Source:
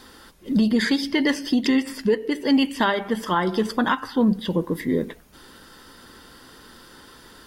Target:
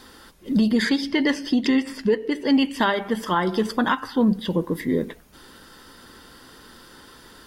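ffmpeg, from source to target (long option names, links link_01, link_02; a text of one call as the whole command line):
ffmpeg -i in.wav -filter_complex "[0:a]asettb=1/sr,asplit=3[link_01][link_02][link_03];[link_01]atrim=end=0.894[link_04];[link_02]atrim=start=0.89:end=2.74,asetpts=PTS-STARTPTS,afade=type=in:duration=0.004:curve=qsin,afade=type=out:start_time=1.846:duration=0.004:curve=qsin,highshelf=frequency=9800:gain=-11[link_05];[link_03]atrim=start=2.736[link_06];[link_04][link_05]acrossfade=duration=0.004:curve1=hsin:curve2=qsin[link_07];[link_07][link_06]acrossfade=duration=0.004:curve1=qsin:curve2=hsin" out.wav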